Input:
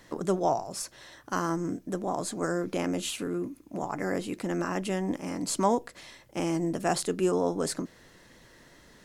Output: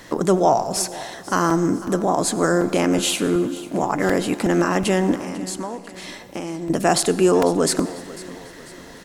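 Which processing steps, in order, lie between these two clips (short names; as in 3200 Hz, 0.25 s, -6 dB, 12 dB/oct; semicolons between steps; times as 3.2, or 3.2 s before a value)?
low shelf 140 Hz -4 dB; in parallel at +0.5 dB: limiter -23 dBFS, peak gain reduction 10.5 dB; 5.15–6.7 on the sum: compressor 5:1, threshold -35 dBFS, peak gain reduction 16.5 dB; feedback echo 0.496 s, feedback 48%, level -18 dB; on a send at -15.5 dB: reverb RT60 1.9 s, pre-delay 73 ms; on the sum: crackling interface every 0.37 s, samples 128, repeat, from 0.76; gain +6.5 dB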